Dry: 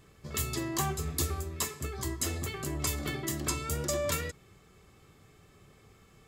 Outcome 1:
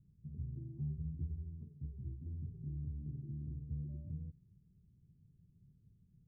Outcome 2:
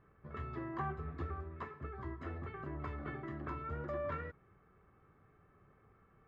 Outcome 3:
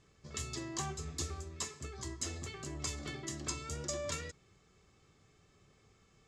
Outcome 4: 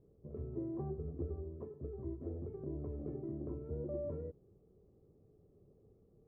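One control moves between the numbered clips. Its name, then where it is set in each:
ladder low-pass, frequency: 200, 1800, 7700, 570 Hz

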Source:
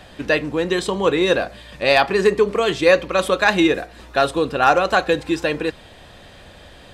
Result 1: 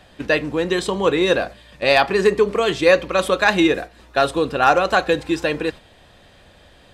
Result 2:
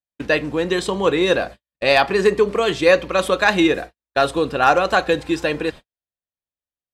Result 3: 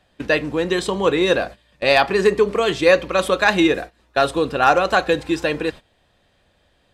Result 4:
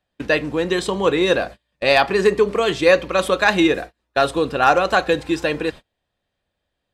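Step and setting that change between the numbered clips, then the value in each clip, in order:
gate, range: -6, -59, -18, -34 dB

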